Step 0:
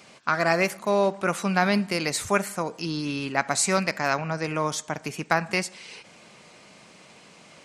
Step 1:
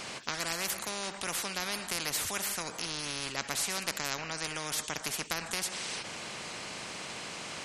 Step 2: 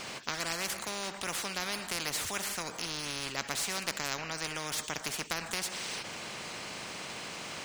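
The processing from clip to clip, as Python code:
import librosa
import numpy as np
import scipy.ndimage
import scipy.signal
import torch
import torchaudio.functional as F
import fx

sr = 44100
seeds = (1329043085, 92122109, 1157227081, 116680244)

y1 = fx.spectral_comp(x, sr, ratio=4.0)
y1 = y1 * librosa.db_to_amplitude(-9.0)
y2 = scipy.ndimage.median_filter(y1, 3, mode='constant')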